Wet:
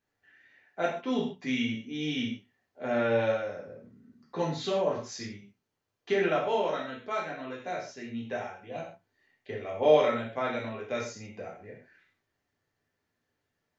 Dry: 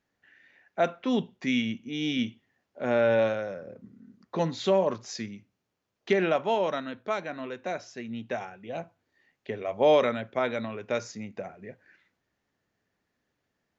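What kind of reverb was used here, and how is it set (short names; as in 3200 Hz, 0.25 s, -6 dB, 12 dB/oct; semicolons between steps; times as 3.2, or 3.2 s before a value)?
non-linear reverb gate 0.17 s falling, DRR -4.5 dB; gain -7.5 dB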